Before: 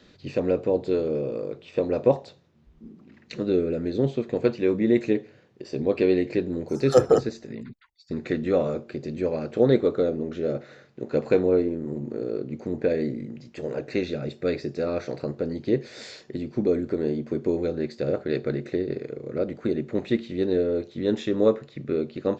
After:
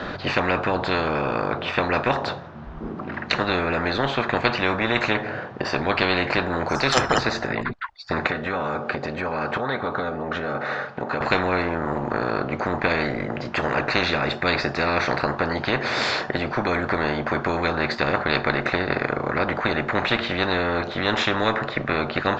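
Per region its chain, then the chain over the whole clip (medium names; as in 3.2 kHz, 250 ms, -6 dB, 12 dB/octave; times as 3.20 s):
8.26–11.21 s: bass shelf 210 Hz -10.5 dB + compression 2:1, threshold -43 dBFS + comb of notches 340 Hz
whole clip: low-pass 3.3 kHz 12 dB/octave; high-order bell 1 kHz +11 dB; spectrum-flattening compressor 4:1; trim -1.5 dB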